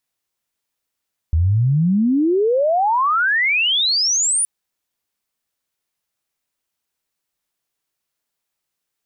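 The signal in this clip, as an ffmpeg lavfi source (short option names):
-f lavfi -i "aevalsrc='pow(10,(-12.5-2.5*t/3.12)/20)*sin(2*PI*76*3.12/log(9900/76)*(exp(log(9900/76)*t/3.12)-1))':d=3.12:s=44100"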